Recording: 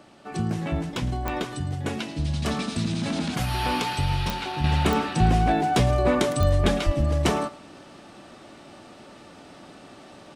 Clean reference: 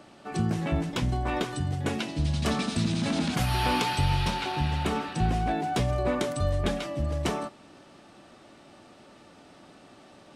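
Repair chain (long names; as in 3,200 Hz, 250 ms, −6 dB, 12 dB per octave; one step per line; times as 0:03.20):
click removal
0:06.85–0:06.97: high-pass filter 140 Hz 24 dB per octave
echo removal 109 ms −19 dB
level 0 dB, from 0:04.64 −6 dB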